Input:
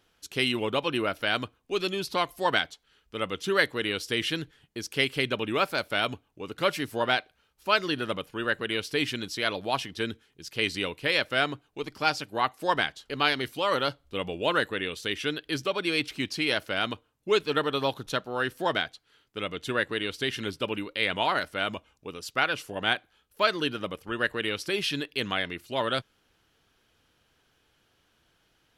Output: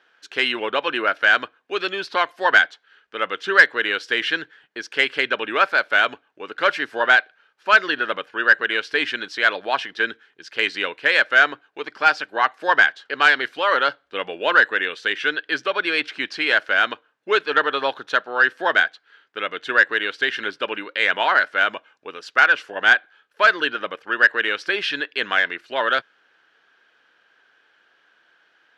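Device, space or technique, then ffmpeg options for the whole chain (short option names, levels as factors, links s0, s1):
intercom: -af "highpass=430,lowpass=3800,equalizer=f=1600:t=o:w=0.44:g=11.5,asoftclip=type=tanh:threshold=0.422,volume=2"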